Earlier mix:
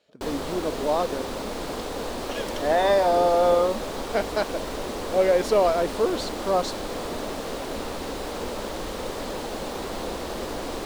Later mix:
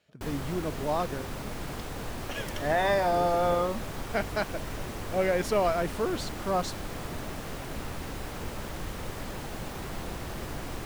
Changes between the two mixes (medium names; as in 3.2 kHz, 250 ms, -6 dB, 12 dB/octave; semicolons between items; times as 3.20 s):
speech +3.5 dB; master: add graphic EQ 125/250/500/1000/4000/8000 Hz +8/-6/-10/-5/-8/-4 dB